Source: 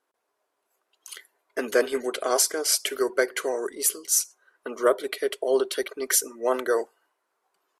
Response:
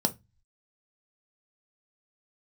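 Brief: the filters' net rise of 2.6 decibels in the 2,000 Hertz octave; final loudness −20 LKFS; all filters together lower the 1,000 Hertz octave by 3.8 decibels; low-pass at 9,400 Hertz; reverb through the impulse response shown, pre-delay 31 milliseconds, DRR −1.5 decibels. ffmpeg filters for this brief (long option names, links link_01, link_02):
-filter_complex "[0:a]lowpass=9400,equalizer=frequency=1000:width_type=o:gain=-7.5,equalizer=frequency=2000:width_type=o:gain=6.5,asplit=2[link_01][link_02];[1:a]atrim=start_sample=2205,adelay=31[link_03];[link_02][link_03]afir=irnorm=-1:irlink=0,volume=-6.5dB[link_04];[link_01][link_04]amix=inputs=2:normalize=0,volume=1dB"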